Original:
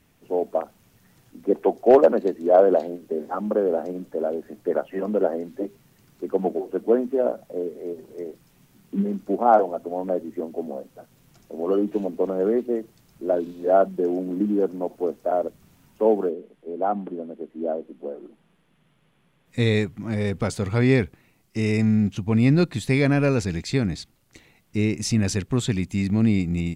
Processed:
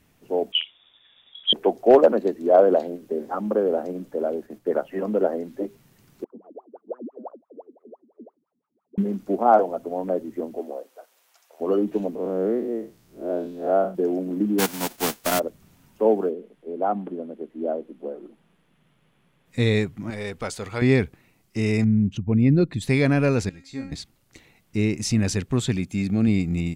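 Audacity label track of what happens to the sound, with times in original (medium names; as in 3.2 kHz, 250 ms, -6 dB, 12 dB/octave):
0.520000	1.530000	frequency inversion carrier 3.6 kHz
4.290000	4.850000	gate -47 dBFS, range -7 dB
6.240000	8.980000	wah-wah 5.9 Hz 220–1300 Hz, Q 21
10.580000	11.600000	high-pass 270 Hz -> 870 Hz 24 dB/octave
12.150000	13.950000	spectral blur width 126 ms
14.580000	15.380000	formants flattened exponent 0.3
20.100000	20.820000	peaking EQ 130 Hz -12 dB 3 oct
21.840000	22.820000	resonances exaggerated exponent 1.5
23.490000	23.920000	feedback comb 270 Hz, decay 0.4 s, mix 90%
25.770000	26.280000	comb of notches 990 Hz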